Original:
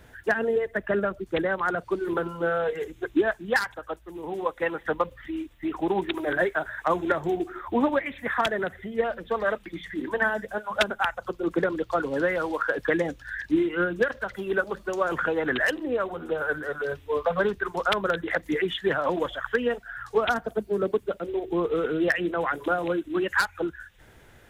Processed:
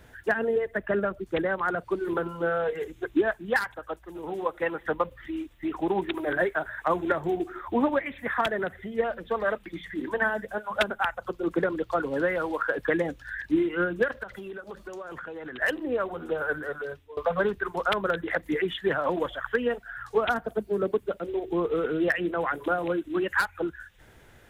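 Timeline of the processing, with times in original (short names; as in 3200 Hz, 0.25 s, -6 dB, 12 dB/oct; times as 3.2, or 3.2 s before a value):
3.65–4.19 echo throw 0.38 s, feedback 50%, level -16.5 dB
14.23–15.62 compressor 10:1, threshold -34 dBFS
16.64–17.17 fade out, to -22.5 dB
whole clip: dynamic EQ 5800 Hz, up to -7 dB, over -51 dBFS, Q 1.1; gain -1 dB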